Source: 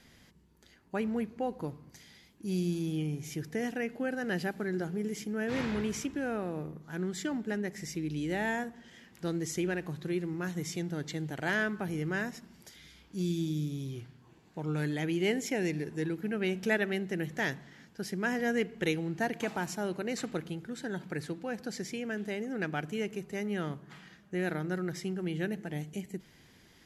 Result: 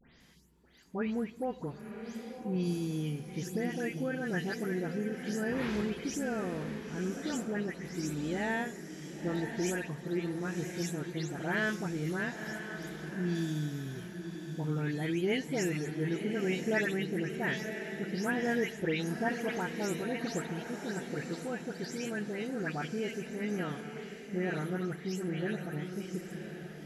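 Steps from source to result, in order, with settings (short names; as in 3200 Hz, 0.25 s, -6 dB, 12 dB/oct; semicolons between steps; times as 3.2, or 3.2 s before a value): spectral delay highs late, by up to 0.205 s; diffused feedback echo 1.002 s, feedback 40%, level -7.5 dB; gain -1 dB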